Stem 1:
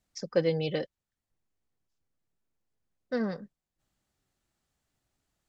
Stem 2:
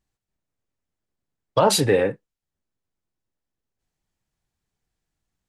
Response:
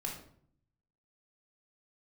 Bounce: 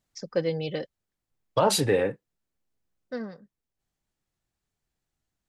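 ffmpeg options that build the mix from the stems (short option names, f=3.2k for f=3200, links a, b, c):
-filter_complex "[0:a]volume=-0.5dB,afade=t=out:st=3.03:d=0.28:silence=0.398107[a];[1:a]volume=-4.5dB[b];[a][b]amix=inputs=2:normalize=0"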